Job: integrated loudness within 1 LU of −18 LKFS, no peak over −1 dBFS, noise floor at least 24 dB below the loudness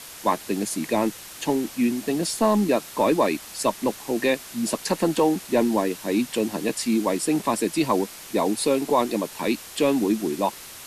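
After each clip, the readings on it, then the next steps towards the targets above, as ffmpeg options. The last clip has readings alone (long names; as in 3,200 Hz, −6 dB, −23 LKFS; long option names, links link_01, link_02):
background noise floor −41 dBFS; target noise floor −48 dBFS; integrated loudness −24.0 LKFS; sample peak −7.5 dBFS; target loudness −18.0 LKFS
→ -af "afftdn=noise_reduction=7:noise_floor=-41"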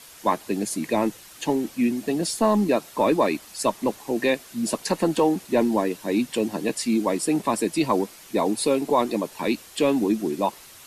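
background noise floor −47 dBFS; target noise floor −48 dBFS
→ -af "afftdn=noise_reduction=6:noise_floor=-47"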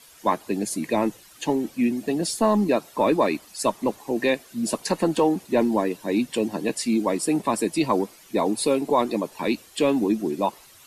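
background noise floor −50 dBFS; integrated loudness −24.0 LKFS; sample peak −8.0 dBFS; target loudness −18.0 LKFS
→ -af "volume=6dB"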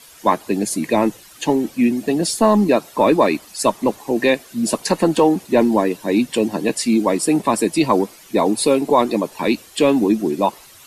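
integrated loudness −18.0 LKFS; sample peak −2.0 dBFS; background noise floor −44 dBFS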